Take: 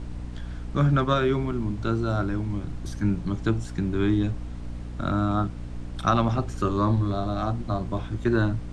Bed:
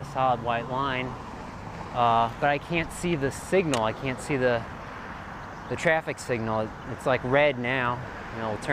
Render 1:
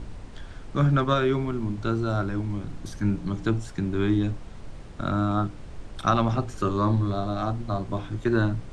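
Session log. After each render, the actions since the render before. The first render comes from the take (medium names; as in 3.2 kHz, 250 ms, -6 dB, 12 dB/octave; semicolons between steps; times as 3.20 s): de-hum 60 Hz, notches 5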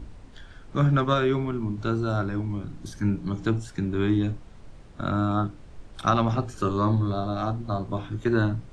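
noise print and reduce 6 dB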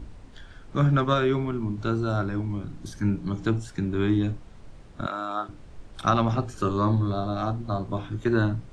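5.06–5.49 s: high-pass 570 Hz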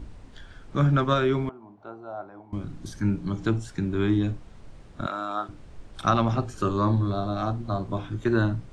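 1.49–2.53 s: band-pass filter 750 Hz, Q 3.4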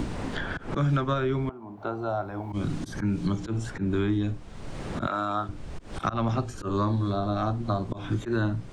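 slow attack 202 ms; three bands compressed up and down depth 100%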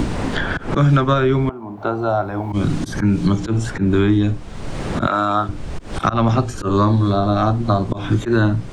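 trim +10.5 dB; peak limiter -2 dBFS, peak gain reduction 1 dB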